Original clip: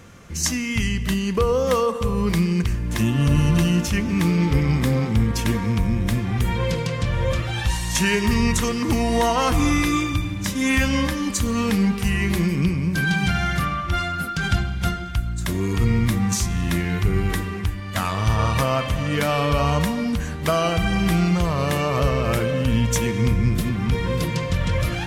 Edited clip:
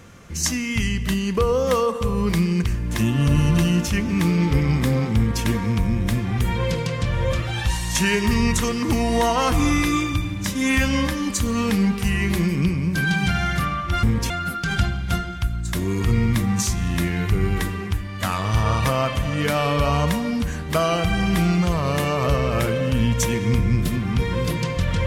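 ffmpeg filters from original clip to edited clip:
ffmpeg -i in.wav -filter_complex "[0:a]asplit=3[link_01][link_02][link_03];[link_01]atrim=end=14.032[link_04];[link_02]atrim=start=5.158:end=5.432[link_05];[link_03]atrim=start=14.028[link_06];[link_04][link_05]acrossfade=duration=0.004:curve1=hsin:curve2=hsin[link_07];[link_07][link_06]acrossfade=duration=0.004:curve1=hsin:curve2=hsin" out.wav

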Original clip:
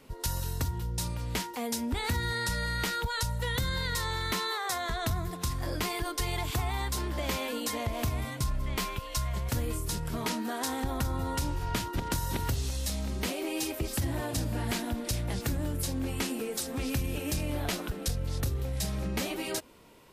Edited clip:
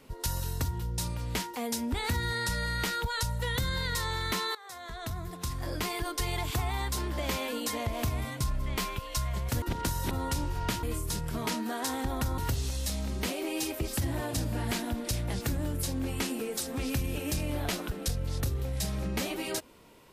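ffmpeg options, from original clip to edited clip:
ffmpeg -i in.wav -filter_complex "[0:a]asplit=6[link_01][link_02][link_03][link_04][link_05][link_06];[link_01]atrim=end=4.55,asetpts=PTS-STARTPTS,afade=type=out:start_time=4.546:duration=0.004:curve=hsin:silence=0.112202[link_07];[link_02]atrim=start=4.55:end=9.622,asetpts=PTS-STARTPTS,afade=type=in:duration=1.86:curve=qsin:silence=0.112202[link_08];[link_03]atrim=start=11.888:end=12.382[link_09];[link_04]atrim=start=11.168:end=11.892[link_10];[link_05]atrim=start=9.618:end=11.172[link_11];[link_06]atrim=start=12.378[link_12];[link_07][link_08]concat=n=2:v=0:a=1[link_13];[link_13][link_09]acrossfade=duration=0.004:curve1=hsin:curve2=hsin[link_14];[link_14][link_10]acrossfade=duration=0.004:curve1=hsin:curve2=hsin[link_15];[link_15][link_11]acrossfade=duration=0.004:curve1=hsin:curve2=hsin[link_16];[link_16][link_12]acrossfade=duration=0.004:curve1=hsin:curve2=hsin" out.wav

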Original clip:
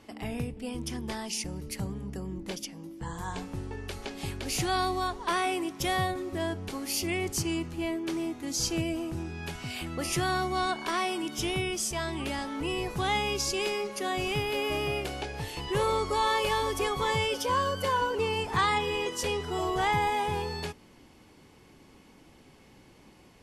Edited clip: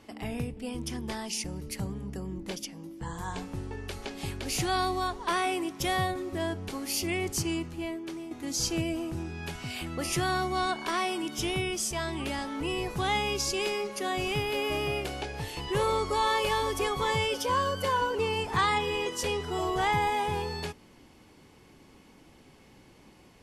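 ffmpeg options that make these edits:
ffmpeg -i in.wav -filter_complex "[0:a]asplit=2[link_01][link_02];[link_01]atrim=end=8.31,asetpts=PTS-STARTPTS,afade=type=out:start_time=7.49:duration=0.82:silence=0.334965[link_03];[link_02]atrim=start=8.31,asetpts=PTS-STARTPTS,afade=type=in:duration=0.004:curve=hsin:silence=0.334965[link_04];[link_03][link_04]concat=n=2:v=0:a=1" out.wav

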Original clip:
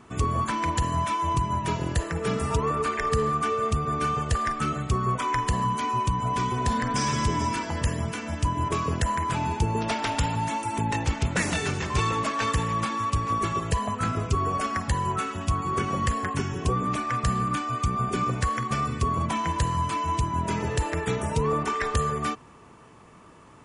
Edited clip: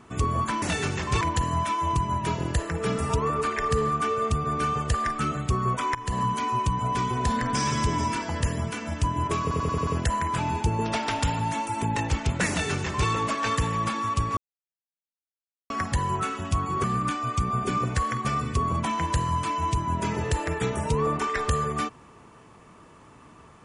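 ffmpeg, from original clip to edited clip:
ffmpeg -i in.wav -filter_complex "[0:a]asplit=12[link_01][link_02][link_03][link_04][link_05][link_06][link_07][link_08][link_09][link_10][link_11][link_12];[link_01]atrim=end=0.622[link_13];[link_02]atrim=start=11.448:end=12.042[link_14];[link_03]atrim=start=0.618:end=5.36,asetpts=PTS-STARTPTS,afade=type=out:start_time=4.738:duration=0.004:curve=hsin:silence=0.141254[link_15];[link_04]atrim=start=5.36:end=8.922,asetpts=PTS-STARTPTS,afade=type=in:duration=0.25:silence=0.141254[link_16];[link_05]atrim=start=8.828:end=8.922[link_17];[link_06]atrim=start=8.828:end=8.922[link_18];[link_07]atrim=start=8.828:end=8.922[link_19];[link_08]atrim=start=8.828:end=8.922[link_20];[link_09]atrim=start=8.828:end=13.33,asetpts=PTS-STARTPTS,afade=type=out:start_time=4.498:duration=0.004:curve=hsin[link_21];[link_10]atrim=start=13.33:end=14.66,asetpts=PTS-STARTPTS,volume=0[link_22];[link_11]atrim=start=14.66:end=15.802,asetpts=PTS-STARTPTS,afade=type=in:duration=0.004:curve=hsin[link_23];[link_12]atrim=start=17.298[link_24];[link_13][link_14]acrossfade=duration=0.004:curve1=hsin:curve2=hsin[link_25];[link_15][link_16]concat=n=2:v=0:a=1[link_26];[link_25][link_26]acrossfade=duration=0.004:curve1=hsin:curve2=hsin[link_27];[link_27][link_17]acrossfade=duration=0.004:curve1=hsin:curve2=hsin[link_28];[link_28][link_18]acrossfade=duration=0.004:curve1=hsin:curve2=hsin[link_29];[link_29][link_19]acrossfade=duration=0.004:curve1=hsin:curve2=hsin[link_30];[link_30][link_20]acrossfade=duration=0.004:curve1=hsin:curve2=hsin[link_31];[link_21][link_22][link_23]concat=n=3:v=0:a=1[link_32];[link_31][link_32]acrossfade=duration=0.004:curve1=hsin:curve2=hsin[link_33];[link_33][link_24]acrossfade=duration=0.004:curve1=hsin:curve2=hsin" out.wav

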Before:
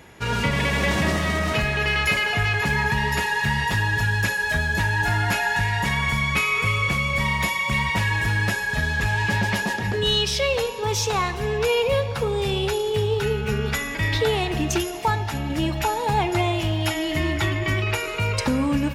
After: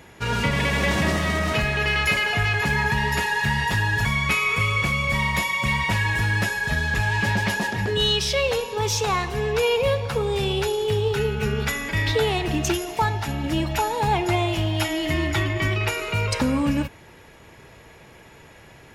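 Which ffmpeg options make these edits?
ffmpeg -i in.wav -filter_complex "[0:a]asplit=2[link_01][link_02];[link_01]atrim=end=4.052[link_03];[link_02]atrim=start=6.108[link_04];[link_03][link_04]acrossfade=duration=0.004:curve1=hsin:curve2=hsin" out.wav

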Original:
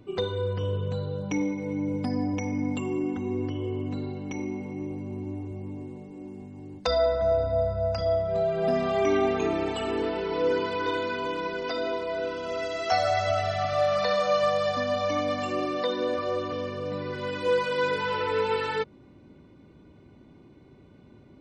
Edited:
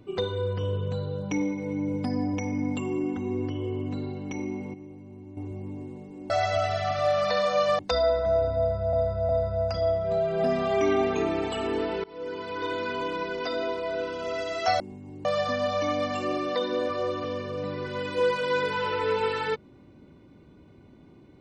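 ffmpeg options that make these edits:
ffmpeg -i in.wav -filter_complex "[0:a]asplit=10[link_01][link_02][link_03][link_04][link_05][link_06][link_07][link_08][link_09][link_10];[link_01]atrim=end=4.742[link_11];[link_02]atrim=start=4.738:end=5.372,asetpts=PTS-STARTPTS,volume=-10dB[link_12];[link_03]atrim=start=5.368:end=6.302[link_13];[link_04]atrim=start=13.038:end=14.532[link_14];[link_05]atrim=start=6.748:end=7.892[link_15];[link_06]atrim=start=7.528:end=7.892[link_16];[link_07]atrim=start=7.528:end=10.28,asetpts=PTS-STARTPTS,afade=type=out:start_time=2.748:duration=0.004:curve=hsin:silence=0.0707946[link_17];[link_08]atrim=start=10.28:end=13.042,asetpts=PTS-STARTPTS,afade=type=in:duration=0.88:silence=0.0707946[link_18];[link_09]atrim=start=6.298:end=6.752[link_19];[link_10]atrim=start=14.528[link_20];[link_11][link_12]acrossfade=duration=0.004:curve1=hsin:curve2=hsin[link_21];[link_21][link_13]acrossfade=duration=0.004:curve1=hsin:curve2=hsin[link_22];[link_22][link_14]acrossfade=duration=0.004:curve1=hsin:curve2=hsin[link_23];[link_23][link_15]acrossfade=duration=0.004:curve1=hsin:curve2=hsin[link_24];[link_24][link_16]acrossfade=duration=0.004:curve1=hsin:curve2=hsin[link_25];[link_17][link_18]concat=n=2:v=0:a=1[link_26];[link_25][link_26]acrossfade=duration=0.004:curve1=hsin:curve2=hsin[link_27];[link_27][link_19]acrossfade=duration=0.004:curve1=hsin:curve2=hsin[link_28];[link_28][link_20]acrossfade=duration=0.004:curve1=hsin:curve2=hsin" out.wav

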